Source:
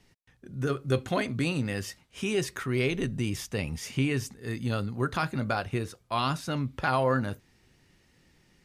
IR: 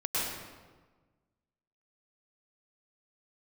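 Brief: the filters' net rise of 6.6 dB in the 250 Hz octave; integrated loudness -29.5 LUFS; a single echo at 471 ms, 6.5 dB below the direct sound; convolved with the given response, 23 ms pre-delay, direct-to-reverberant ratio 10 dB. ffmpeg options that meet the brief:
-filter_complex "[0:a]equalizer=f=250:t=o:g=8,aecho=1:1:471:0.473,asplit=2[s0][s1];[1:a]atrim=start_sample=2205,adelay=23[s2];[s1][s2]afir=irnorm=-1:irlink=0,volume=0.126[s3];[s0][s3]amix=inputs=2:normalize=0,volume=0.631"

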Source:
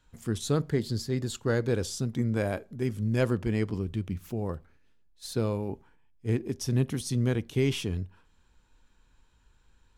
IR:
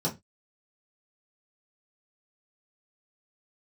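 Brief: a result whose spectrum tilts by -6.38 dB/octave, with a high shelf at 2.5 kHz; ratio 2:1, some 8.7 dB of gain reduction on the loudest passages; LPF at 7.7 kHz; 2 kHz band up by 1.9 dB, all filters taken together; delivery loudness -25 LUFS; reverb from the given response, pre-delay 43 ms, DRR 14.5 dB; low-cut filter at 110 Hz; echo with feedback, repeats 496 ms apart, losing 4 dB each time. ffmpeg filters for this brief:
-filter_complex "[0:a]highpass=110,lowpass=7700,equalizer=f=2000:t=o:g=4,highshelf=f=2500:g=-3.5,acompressor=threshold=0.0141:ratio=2,aecho=1:1:496|992|1488|1984|2480|2976|3472|3968|4464:0.631|0.398|0.25|0.158|0.0994|0.0626|0.0394|0.0249|0.0157,asplit=2[s0][s1];[1:a]atrim=start_sample=2205,adelay=43[s2];[s1][s2]afir=irnorm=-1:irlink=0,volume=0.0794[s3];[s0][s3]amix=inputs=2:normalize=0,volume=3.55"

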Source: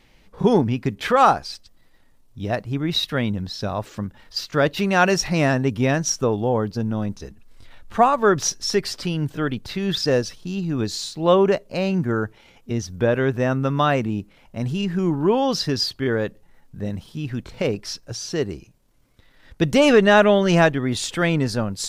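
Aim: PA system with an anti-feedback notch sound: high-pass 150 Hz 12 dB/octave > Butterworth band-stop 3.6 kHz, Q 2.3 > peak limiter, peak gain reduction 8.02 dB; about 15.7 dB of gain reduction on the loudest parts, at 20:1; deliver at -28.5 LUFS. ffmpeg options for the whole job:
-af "acompressor=threshold=0.0562:ratio=20,highpass=150,asuperstop=centerf=3600:order=8:qfactor=2.3,volume=1.78,alimiter=limit=0.126:level=0:latency=1"

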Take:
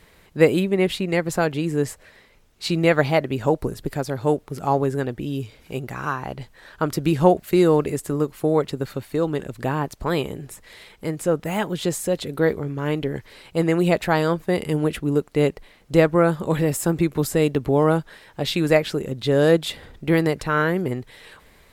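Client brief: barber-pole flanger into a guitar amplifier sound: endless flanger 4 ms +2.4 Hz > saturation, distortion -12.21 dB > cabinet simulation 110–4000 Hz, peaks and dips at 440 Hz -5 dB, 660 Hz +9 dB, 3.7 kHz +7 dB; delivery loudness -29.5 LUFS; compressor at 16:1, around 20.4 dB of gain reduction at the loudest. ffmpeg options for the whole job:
-filter_complex "[0:a]acompressor=threshold=0.0316:ratio=16,asplit=2[s0][s1];[s1]adelay=4,afreqshift=2.4[s2];[s0][s2]amix=inputs=2:normalize=1,asoftclip=threshold=0.0237,highpass=110,equalizer=f=440:t=q:w=4:g=-5,equalizer=f=660:t=q:w=4:g=9,equalizer=f=3700:t=q:w=4:g=7,lowpass=f=4000:w=0.5412,lowpass=f=4000:w=1.3066,volume=3.98"

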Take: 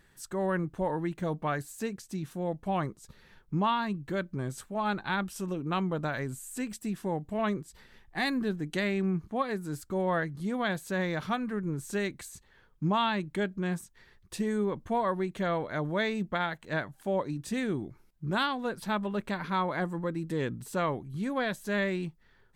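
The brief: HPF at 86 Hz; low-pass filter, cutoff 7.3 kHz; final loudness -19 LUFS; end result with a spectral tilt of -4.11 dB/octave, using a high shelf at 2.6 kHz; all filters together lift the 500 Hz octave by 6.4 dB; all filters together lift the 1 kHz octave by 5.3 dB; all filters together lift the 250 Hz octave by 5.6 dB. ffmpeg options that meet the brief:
-af "highpass=86,lowpass=7300,equalizer=f=250:t=o:g=6.5,equalizer=f=500:t=o:g=5,equalizer=f=1000:t=o:g=5.5,highshelf=f=2600:g=-5.5,volume=2.51"

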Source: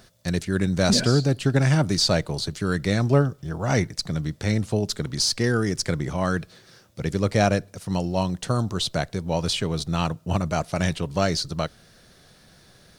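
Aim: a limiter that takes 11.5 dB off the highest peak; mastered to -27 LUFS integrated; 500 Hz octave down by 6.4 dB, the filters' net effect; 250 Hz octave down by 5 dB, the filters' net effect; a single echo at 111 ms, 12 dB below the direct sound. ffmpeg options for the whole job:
-af "equalizer=f=250:t=o:g=-6.5,equalizer=f=500:t=o:g=-6.5,alimiter=limit=0.119:level=0:latency=1,aecho=1:1:111:0.251,volume=1.33"

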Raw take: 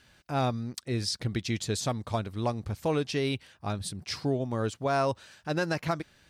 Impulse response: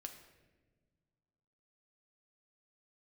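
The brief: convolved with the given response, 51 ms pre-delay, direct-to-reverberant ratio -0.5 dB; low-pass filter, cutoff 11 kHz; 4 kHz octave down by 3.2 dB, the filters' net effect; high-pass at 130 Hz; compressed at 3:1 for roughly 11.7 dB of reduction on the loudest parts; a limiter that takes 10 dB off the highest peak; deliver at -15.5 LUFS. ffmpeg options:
-filter_complex "[0:a]highpass=130,lowpass=11000,equalizer=f=4000:t=o:g=-4,acompressor=threshold=0.01:ratio=3,alimiter=level_in=3.35:limit=0.0631:level=0:latency=1,volume=0.299,asplit=2[s0][s1];[1:a]atrim=start_sample=2205,adelay=51[s2];[s1][s2]afir=irnorm=-1:irlink=0,volume=1.78[s3];[s0][s3]amix=inputs=2:normalize=0,volume=21.1"

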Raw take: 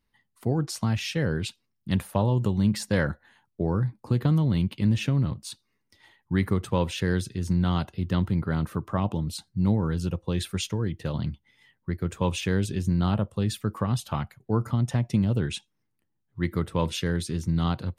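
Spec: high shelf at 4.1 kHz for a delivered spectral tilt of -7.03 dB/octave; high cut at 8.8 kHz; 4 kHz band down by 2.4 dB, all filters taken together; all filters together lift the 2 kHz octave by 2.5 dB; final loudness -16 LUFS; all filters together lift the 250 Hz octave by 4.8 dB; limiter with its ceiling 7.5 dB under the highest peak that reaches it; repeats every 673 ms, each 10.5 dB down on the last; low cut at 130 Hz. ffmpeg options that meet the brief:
-af "highpass=130,lowpass=8800,equalizer=f=250:t=o:g=8,equalizer=f=2000:t=o:g=4,equalizer=f=4000:t=o:g=-6.5,highshelf=f=4100:g=3.5,alimiter=limit=0.141:level=0:latency=1,aecho=1:1:673|1346|2019:0.299|0.0896|0.0269,volume=3.98"

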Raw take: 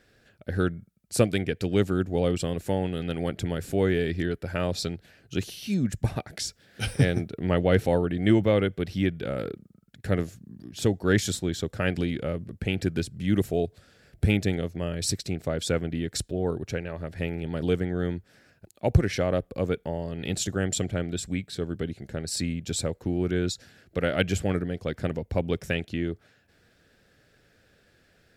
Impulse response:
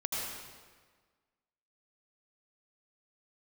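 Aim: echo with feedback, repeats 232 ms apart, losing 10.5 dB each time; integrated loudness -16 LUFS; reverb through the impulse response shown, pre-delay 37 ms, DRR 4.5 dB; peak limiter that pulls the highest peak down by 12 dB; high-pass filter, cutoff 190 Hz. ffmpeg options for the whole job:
-filter_complex "[0:a]highpass=190,alimiter=limit=0.106:level=0:latency=1,aecho=1:1:232|464|696:0.299|0.0896|0.0269,asplit=2[s0][s1];[1:a]atrim=start_sample=2205,adelay=37[s2];[s1][s2]afir=irnorm=-1:irlink=0,volume=0.335[s3];[s0][s3]amix=inputs=2:normalize=0,volume=5.62"

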